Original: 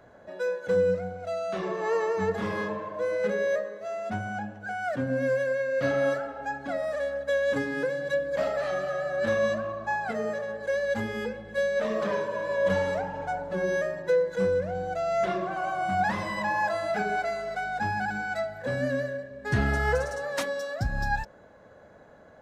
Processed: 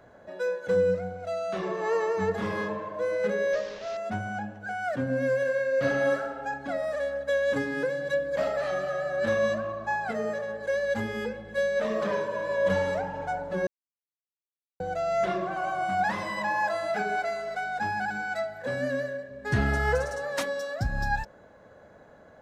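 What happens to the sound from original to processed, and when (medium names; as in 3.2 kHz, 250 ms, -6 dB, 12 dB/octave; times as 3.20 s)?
3.53–3.97 s: one-bit delta coder 32 kbps, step -36 dBFS
5.36–6.54 s: flutter echo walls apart 10.9 m, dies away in 0.54 s
13.67–14.80 s: mute
15.85–19.29 s: bass shelf 140 Hz -10 dB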